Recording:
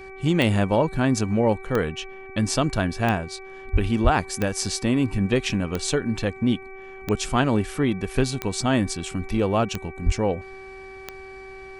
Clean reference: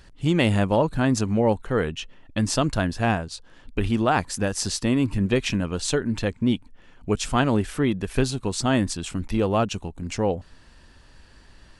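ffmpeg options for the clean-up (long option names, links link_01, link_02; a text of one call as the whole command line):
ffmpeg -i in.wav -filter_complex "[0:a]adeclick=threshold=4,bandreject=frequency=383.4:width_type=h:width=4,bandreject=frequency=766.8:width_type=h:width=4,bandreject=frequency=1150.2:width_type=h:width=4,bandreject=frequency=1533.6:width_type=h:width=4,bandreject=frequency=1917:width_type=h:width=4,bandreject=frequency=2300:width=30,asplit=3[link_01][link_02][link_03];[link_01]afade=type=out:start_time=3.72:duration=0.02[link_04];[link_02]highpass=frequency=140:width=0.5412,highpass=frequency=140:width=1.3066,afade=type=in:start_time=3.72:duration=0.02,afade=type=out:start_time=3.84:duration=0.02[link_05];[link_03]afade=type=in:start_time=3.84:duration=0.02[link_06];[link_04][link_05][link_06]amix=inputs=3:normalize=0,asplit=3[link_07][link_08][link_09];[link_07]afade=type=out:start_time=4.03:duration=0.02[link_10];[link_08]highpass=frequency=140:width=0.5412,highpass=frequency=140:width=1.3066,afade=type=in:start_time=4.03:duration=0.02,afade=type=out:start_time=4.15:duration=0.02[link_11];[link_09]afade=type=in:start_time=4.15:duration=0.02[link_12];[link_10][link_11][link_12]amix=inputs=3:normalize=0,asplit=3[link_13][link_14][link_15];[link_13]afade=type=out:start_time=10.05:duration=0.02[link_16];[link_14]highpass=frequency=140:width=0.5412,highpass=frequency=140:width=1.3066,afade=type=in:start_time=10.05:duration=0.02,afade=type=out:start_time=10.17:duration=0.02[link_17];[link_15]afade=type=in:start_time=10.17:duration=0.02[link_18];[link_16][link_17][link_18]amix=inputs=3:normalize=0" out.wav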